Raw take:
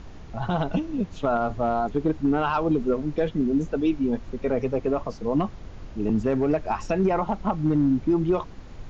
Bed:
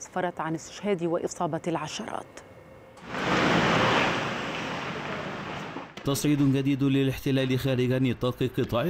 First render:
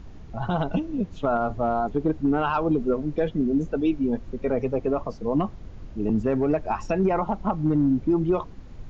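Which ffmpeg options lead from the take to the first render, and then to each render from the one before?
-af "afftdn=nr=6:nf=-42"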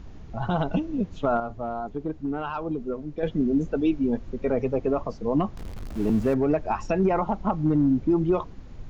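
-filter_complex "[0:a]asettb=1/sr,asplit=3[a][b][c];[a]atrim=end=5.574[d];[b]atrim=start=5.57:end=6.34,asetpts=PTS-STARTPTS,afade=t=in:d=0.004:c=qsin,afade=t=out:st=0.766:d=0.004:c=qsin,aeval=exprs='val(0)+0.5*0.0168*sgn(val(0))':c=same[e];[c]atrim=start=6.336[f];[d][e]acrossfade=d=0.004:c1=hsin:c2=qsin[g];[g][f]acrossfade=d=0.004:c1=qsin:c2=hsin,asplit=3[h][i][j];[h]atrim=end=1.402[k];[i]atrim=start=1.398:end=3.232,asetpts=PTS-STARTPTS,volume=-7dB[l];[j]atrim=start=3.228[m];[k][l]acrossfade=d=0.004:c1=hsin:c2=hsin[n];[n][m]acrossfade=d=0.004:c1=hsin:c2=hsin"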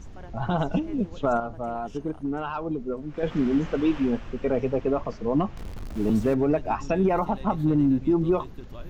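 -filter_complex "[1:a]volume=-18.5dB[a];[0:a][a]amix=inputs=2:normalize=0"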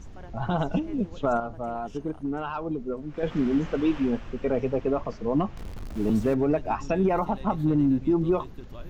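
-af "volume=-1dB"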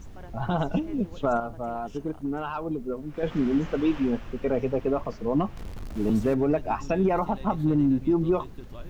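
-af "acrusher=bits=10:mix=0:aa=0.000001"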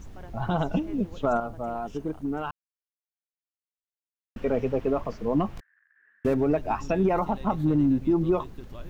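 -filter_complex "[0:a]asettb=1/sr,asplit=3[a][b][c];[a]atrim=end=5.604[d];[b]atrim=start=5.6:end=6.25,asetpts=PTS-STARTPTS,afade=t=in:d=0.004:c=qsin,afade=t=out:st=0.646:d=0.004:c=qsin,asuperpass=centerf=1700:order=4:qfactor=7.9[e];[c]atrim=start=6.246[f];[d][e]acrossfade=d=0.004:c1=hsin:c2=qsin[g];[g][f]acrossfade=d=0.004:c1=qsin:c2=hsin,asplit=3[h][i][j];[h]atrim=end=2.51,asetpts=PTS-STARTPTS,afade=t=out:st=2.506:d=0.004:c=hsin[k];[i]atrim=start=2.51:end=4.36,asetpts=PTS-STARTPTS,volume=0[l];[j]atrim=start=4.36,asetpts=PTS-STARTPTS,afade=t=in:d=0.004:c=hsin[m];[k][l][m]concat=n=3:v=0:a=1"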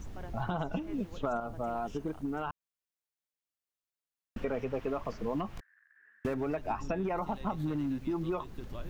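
-filter_complex "[0:a]acrossover=split=960|2000[a][b][c];[a]acompressor=threshold=-33dB:ratio=4[d];[b]acompressor=threshold=-40dB:ratio=4[e];[c]acompressor=threshold=-54dB:ratio=4[f];[d][e][f]amix=inputs=3:normalize=0"

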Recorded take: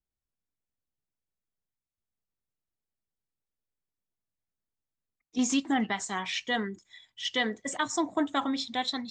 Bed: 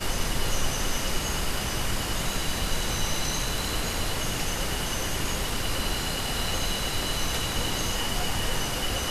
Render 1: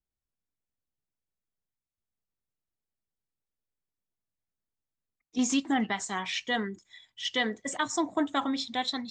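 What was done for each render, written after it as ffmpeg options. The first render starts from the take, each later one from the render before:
-af anull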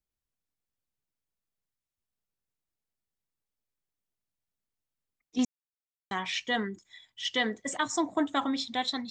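-filter_complex "[0:a]asplit=3[a][b][c];[a]atrim=end=5.45,asetpts=PTS-STARTPTS,afade=t=out:st=5.446:d=0.004:c=hsin[d];[b]atrim=start=5.45:end=6.11,asetpts=PTS-STARTPTS,volume=0[e];[c]atrim=start=6.11,asetpts=PTS-STARTPTS,afade=t=in:d=0.004:c=hsin[f];[d][e][f]concat=n=3:v=0:a=1"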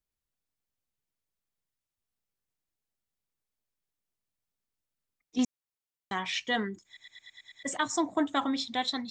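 -filter_complex "[0:a]asplit=8[a][b][c][d][e][f][g][h];[a]atrim=end=6.972[i];[b]atrim=start=6.858:end=6.972[j];[c]atrim=start=6.858:end=6.972[k];[d]atrim=start=6.858:end=6.972[l];[e]atrim=start=6.858:end=6.972[m];[f]atrim=start=6.858:end=6.972[n];[g]atrim=start=6.858:end=6.972[o];[h]atrim=start=7.628[p];[i][j]acrossfade=d=0.004:c1=hsin:c2=hsin[q];[q][k]acrossfade=d=0.004:c1=hsin:c2=hsin[r];[r][l]acrossfade=d=0.004:c1=hsin:c2=hsin[s];[s][m]acrossfade=d=0.004:c1=hsin:c2=hsin[t];[t][n]acrossfade=d=0.004:c1=hsin:c2=hsin[u];[u][o]acrossfade=d=0.004:c1=hsin:c2=hsin[v];[v][p]acrossfade=d=0.004:c1=hsin:c2=hsin"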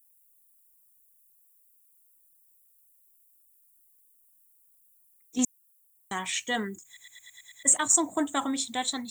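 -af "aexciter=amount=12.9:drive=9.1:freq=7.7k"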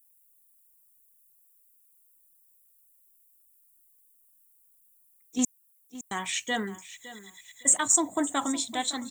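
-af "aecho=1:1:561|1122:0.158|0.038"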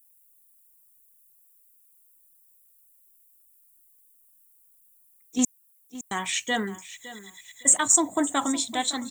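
-af "volume=3dB"

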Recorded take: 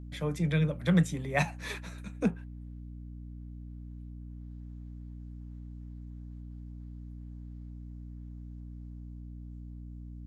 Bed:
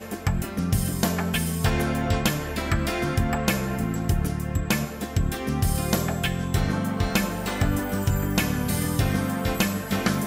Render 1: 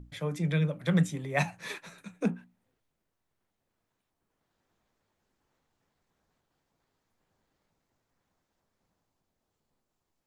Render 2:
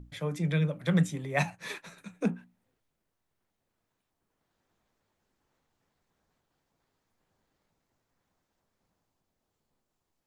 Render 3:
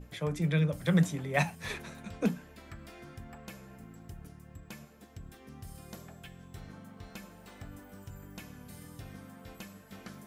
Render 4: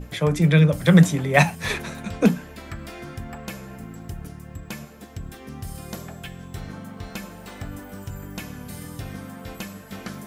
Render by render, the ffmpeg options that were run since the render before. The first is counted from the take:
-af "bandreject=f=60:t=h:w=6,bandreject=f=120:t=h:w=6,bandreject=f=180:t=h:w=6,bandreject=f=240:t=h:w=6,bandreject=f=300:t=h:w=6"
-filter_complex "[0:a]asettb=1/sr,asplit=3[a][b][c];[a]atrim=end=1.504[d];[b]atrim=start=1.5:end=1.97,asetpts=PTS-STARTPTS,afade=t=in:d=0.004:c=qsin,afade=t=out:st=0.466:d=0.004:c=qsin,agate=range=-7dB:threshold=-54dB:ratio=16:release=100:detection=peak[e];[c]atrim=start=1.966[f];[d][e]acrossfade=d=0.004:c1=hsin:c2=qsin[g];[g][f]acrossfade=d=0.004:c1=qsin:c2=hsin"
-filter_complex "[1:a]volume=-23.5dB[a];[0:a][a]amix=inputs=2:normalize=0"
-af "volume=12dB"

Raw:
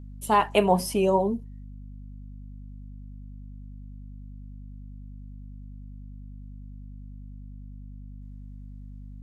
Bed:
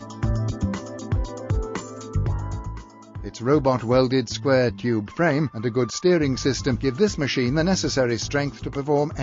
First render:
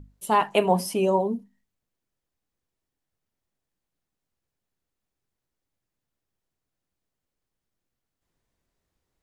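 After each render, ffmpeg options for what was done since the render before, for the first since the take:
-af "bandreject=f=50:t=h:w=6,bandreject=f=100:t=h:w=6,bandreject=f=150:t=h:w=6,bandreject=f=200:t=h:w=6,bandreject=f=250:t=h:w=6"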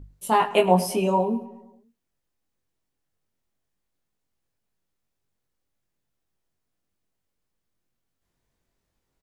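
-filter_complex "[0:a]asplit=2[a][b];[b]adelay=22,volume=-3.5dB[c];[a][c]amix=inputs=2:normalize=0,asplit=2[d][e];[e]adelay=107,lowpass=f=3.6k:p=1,volume=-16dB,asplit=2[f][g];[g]adelay=107,lowpass=f=3.6k:p=1,volume=0.54,asplit=2[h][i];[i]adelay=107,lowpass=f=3.6k:p=1,volume=0.54,asplit=2[j][k];[k]adelay=107,lowpass=f=3.6k:p=1,volume=0.54,asplit=2[l][m];[m]adelay=107,lowpass=f=3.6k:p=1,volume=0.54[n];[d][f][h][j][l][n]amix=inputs=6:normalize=0"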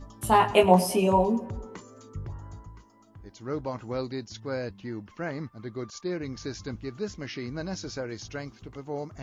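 -filter_complex "[1:a]volume=-13.5dB[a];[0:a][a]amix=inputs=2:normalize=0"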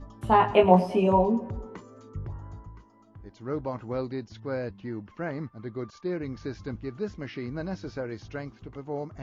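-filter_complex "[0:a]aemphasis=mode=reproduction:type=75fm,acrossover=split=4200[a][b];[b]acompressor=threshold=-56dB:ratio=4:attack=1:release=60[c];[a][c]amix=inputs=2:normalize=0"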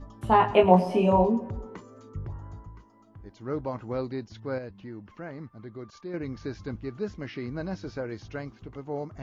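-filter_complex "[0:a]asettb=1/sr,asplit=3[a][b][c];[a]atrim=end=0.834[d];[b]atrim=start=0.83:end=1.28,asetpts=PTS-STARTPTS,afade=t=in:d=0.004:c=qsin,afade=t=out:st=0.446:d=0.004:c=qsin,asplit=2[e][f];[f]adelay=33,volume=-6dB[g];[e][g]amix=inputs=2:normalize=0,atrim=end_sample=19845[h];[c]atrim=start=1.276[i];[d][h]acrossfade=d=0.004:c1=hsin:c2=qsin[j];[j][i]acrossfade=d=0.004:c1=qsin:c2=hsin,asettb=1/sr,asplit=3[k][l][m];[k]atrim=end=4.584[n];[l]atrim=start=4.58:end=6.14,asetpts=PTS-STARTPTS,afade=t=in:d=0.004:c=qsin,afade=t=out:st=1.556:d=0.004:c=qsin,acompressor=threshold=-46dB:ratio=1.5:attack=3.2:release=140:knee=1:detection=peak[o];[m]atrim=start=6.136[p];[n][o]acrossfade=d=0.004:c1=hsin:c2=qsin[q];[q][p]acrossfade=d=0.004:c1=qsin:c2=hsin"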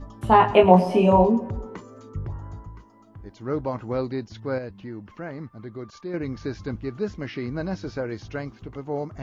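-af "volume=4.5dB,alimiter=limit=-2dB:level=0:latency=1"

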